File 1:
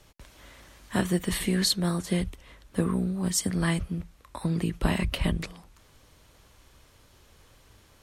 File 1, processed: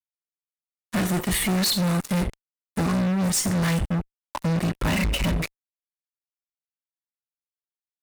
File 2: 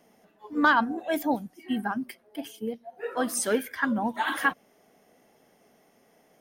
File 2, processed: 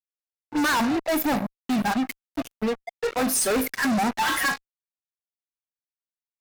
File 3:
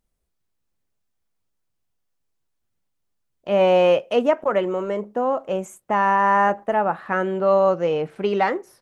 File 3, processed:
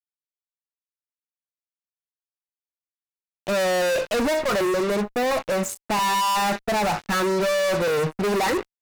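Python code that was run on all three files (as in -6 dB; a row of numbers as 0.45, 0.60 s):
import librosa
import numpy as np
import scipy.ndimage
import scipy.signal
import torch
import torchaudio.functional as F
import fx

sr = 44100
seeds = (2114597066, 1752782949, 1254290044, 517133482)

y = fx.bin_expand(x, sr, power=1.5)
y = fx.comb_fb(y, sr, f0_hz=52.0, decay_s=0.33, harmonics='all', damping=0.0, mix_pct=50)
y = fx.fuzz(y, sr, gain_db=46.0, gate_db=-47.0)
y = fx.notch(y, sr, hz=3200.0, q=14.0)
y = y * 10.0 ** (-7.5 / 20.0)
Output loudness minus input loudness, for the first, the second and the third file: +4.0, +3.0, -2.0 LU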